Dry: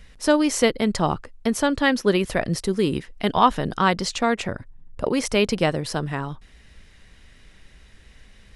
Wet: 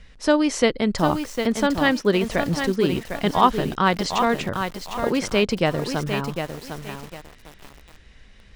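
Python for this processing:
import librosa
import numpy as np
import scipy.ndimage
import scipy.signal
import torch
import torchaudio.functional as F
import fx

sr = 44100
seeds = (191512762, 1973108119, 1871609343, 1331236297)

y = scipy.signal.sosfilt(scipy.signal.butter(2, 6700.0, 'lowpass', fs=sr, output='sos'), x)
y = fx.echo_crushed(y, sr, ms=754, feedback_pct=35, bits=6, wet_db=-6.5)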